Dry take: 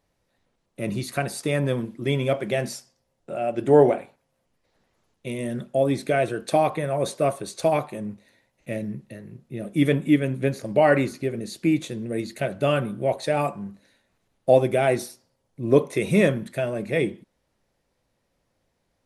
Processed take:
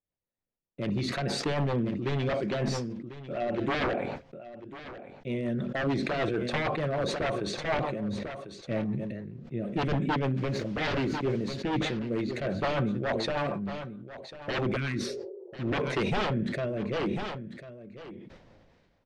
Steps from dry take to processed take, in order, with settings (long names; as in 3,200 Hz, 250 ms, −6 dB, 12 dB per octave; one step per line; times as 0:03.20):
noise gate with hold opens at −41 dBFS
0:14.79–0:15.54: healed spectral selection 350–980 Hz after
wave folding −20.5 dBFS
rotating-speaker cabinet horn 6.7 Hz, later 0.7 Hz, at 0:14.93
0:10.37–0:11.54: bit-depth reduction 8 bits, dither none
high-frequency loss of the air 180 metres
single-tap delay 1,046 ms −14.5 dB
level that may fall only so fast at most 32 dB per second